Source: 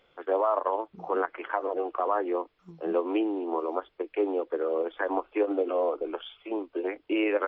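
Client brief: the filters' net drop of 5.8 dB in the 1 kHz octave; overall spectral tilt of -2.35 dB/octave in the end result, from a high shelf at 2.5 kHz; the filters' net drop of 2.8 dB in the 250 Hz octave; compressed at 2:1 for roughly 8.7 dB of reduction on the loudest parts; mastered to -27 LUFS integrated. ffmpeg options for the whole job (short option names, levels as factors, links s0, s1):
-af "equalizer=f=250:t=o:g=-3.5,equalizer=f=1000:t=o:g=-8.5,highshelf=f=2500:g=6,acompressor=threshold=0.01:ratio=2,volume=4.22"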